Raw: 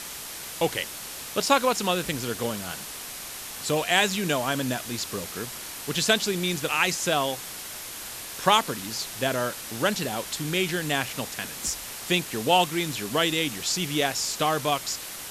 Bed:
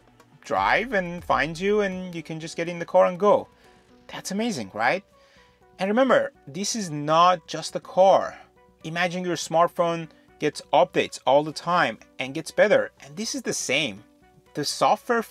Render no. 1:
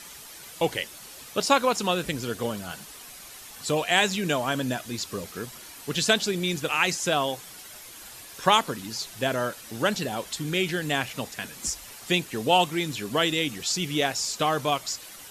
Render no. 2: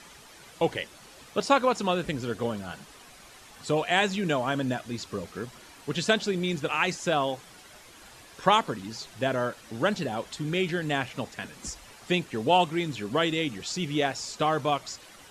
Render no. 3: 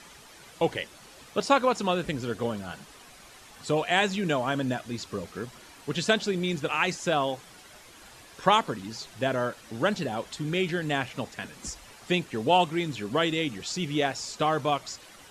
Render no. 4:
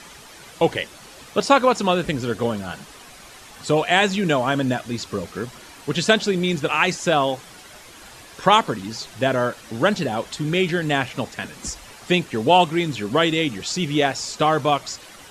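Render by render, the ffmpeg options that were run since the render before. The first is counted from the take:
-af "afftdn=nr=9:nf=-38"
-af "lowpass=10k,highshelf=f=3k:g=-9"
-af anull
-af "volume=7dB,alimiter=limit=-2dB:level=0:latency=1"

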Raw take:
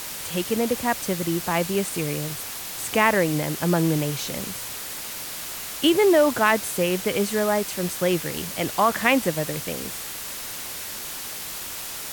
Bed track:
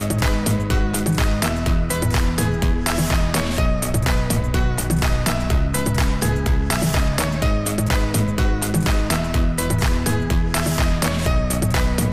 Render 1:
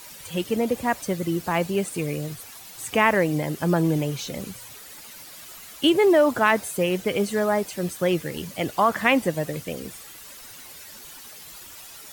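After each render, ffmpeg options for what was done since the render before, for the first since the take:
-af "afftdn=nr=12:nf=-34"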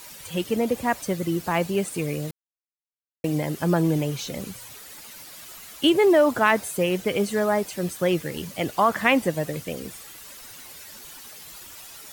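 -filter_complex "[0:a]asettb=1/sr,asplit=3[a][b][c];[a]atrim=end=8.154[d];[b]atrim=start=8.15:end=8.97,asetpts=PTS-STARTPTS,afade=t=in:d=0.004:c=qsin,afade=t=out:st=0.816:d=0.004:c=qsin,aeval=exprs='val(0)*gte(abs(val(0)),0.00447)':c=same[e];[c]atrim=start=8.966[f];[d][e]acrossfade=d=0.004:c1=hsin:c2=qsin[g];[g][f]acrossfade=d=0.004:c1=qsin:c2=hsin,asplit=3[h][i][j];[h]atrim=end=2.31,asetpts=PTS-STARTPTS,afade=t=out:st=2.306:d=0.004:c=hsin[k];[i]atrim=start=2.31:end=3.24,asetpts=PTS-STARTPTS,volume=0[l];[j]atrim=start=3.24,asetpts=PTS-STARTPTS,afade=t=in:d=0.004:c=hsin[m];[k][l][m]concat=n=3:v=0:a=1"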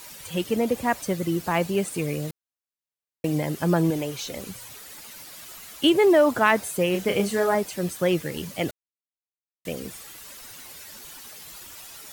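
-filter_complex "[0:a]asettb=1/sr,asplit=3[a][b][c];[a]atrim=end=3.904[d];[b]atrim=start=3.9:end=4.49,asetpts=PTS-STARTPTS,afade=t=in:d=0.004:c=qsin,afade=t=out:st=0.586:d=0.004:c=qsin,equalizer=f=160:w=1.2:g=-9[e];[c]atrim=start=4.486[f];[d][e]acrossfade=d=0.004:c1=hsin:c2=qsin[g];[g][f]acrossfade=d=0.004:c1=qsin:c2=hsin,asettb=1/sr,asplit=3[h][i][j];[h]atrim=end=6.914[k];[i]atrim=start=6.91:end=7.55,asetpts=PTS-STARTPTS,afade=t=in:d=0.004:c=qsin,afade=t=out:st=0.636:d=0.004:c=qsin,asplit=2[l][m];[m]adelay=31,volume=-5dB[n];[l][n]amix=inputs=2:normalize=0,atrim=end_sample=28224[o];[j]atrim=start=7.546[p];[k][o]acrossfade=d=0.004:c1=hsin:c2=qsin[q];[q][p]acrossfade=d=0.004:c1=qsin:c2=hsin,asplit=3[r][s][t];[r]atrim=end=8.71,asetpts=PTS-STARTPTS,afade=t=out:st=8.706:d=0.004:c=hsin[u];[s]atrim=start=8.71:end=9.65,asetpts=PTS-STARTPTS,volume=0[v];[t]atrim=start=9.65,asetpts=PTS-STARTPTS,afade=t=in:d=0.004:c=hsin[w];[u][v][w]concat=n=3:v=0:a=1"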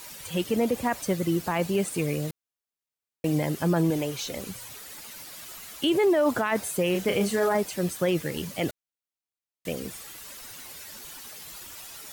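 -af "alimiter=limit=-15.5dB:level=0:latency=1:release=18"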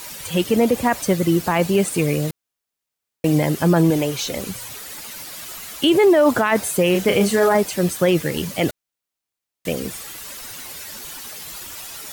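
-af "volume=8dB"

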